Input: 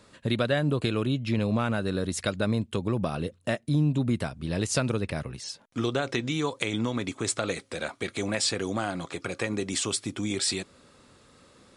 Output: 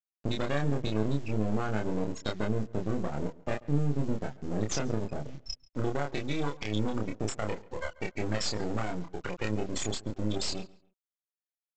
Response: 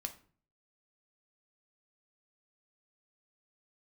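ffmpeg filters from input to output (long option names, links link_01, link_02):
-filter_complex "[0:a]highpass=92,afftfilt=real='re*gte(hypot(re,im),0.0794)':imag='im*gte(hypot(re,im),0.0794)':win_size=1024:overlap=0.75,highshelf=frequency=5800:gain=11.5,alimiter=limit=-18dB:level=0:latency=1:release=144,acompressor=threshold=-43dB:ratio=1.5,acrusher=bits=7:dc=4:mix=0:aa=0.000001,aresample=16000,aeval=exprs='max(val(0),0)':channel_layout=same,aresample=44100,asplit=2[link_01][link_02];[link_02]adelay=28,volume=-3dB[link_03];[link_01][link_03]amix=inputs=2:normalize=0,asplit=2[link_04][link_05];[link_05]adelay=138,lowpass=frequency=4000:poles=1,volume=-21dB,asplit=2[link_06][link_07];[link_07]adelay=138,lowpass=frequency=4000:poles=1,volume=0.29[link_08];[link_06][link_08]amix=inputs=2:normalize=0[link_09];[link_04][link_09]amix=inputs=2:normalize=0,volume=6dB"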